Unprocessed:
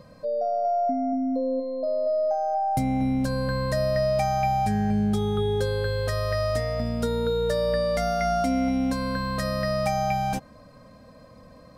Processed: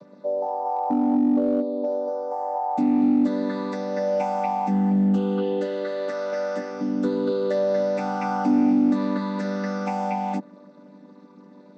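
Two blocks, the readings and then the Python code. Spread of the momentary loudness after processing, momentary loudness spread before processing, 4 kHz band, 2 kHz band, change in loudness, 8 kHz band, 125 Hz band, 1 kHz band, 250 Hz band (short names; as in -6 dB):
8 LU, 4 LU, -9.0 dB, -3.0 dB, +1.5 dB, n/a, -5.0 dB, -0.5 dB, +6.0 dB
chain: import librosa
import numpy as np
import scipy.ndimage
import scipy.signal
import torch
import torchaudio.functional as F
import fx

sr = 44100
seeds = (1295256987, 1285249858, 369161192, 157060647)

p1 = fx.chord_vocoder(x, sr, chord='major triad', root=55)
p2 = np.clip(p1, -10.0 ** (-21.5 / 20.0), 10.0 ** (-21.5 / 20.0))
y = p1 + F.gain(torch.from_numpy(p2), -6.0).numpy()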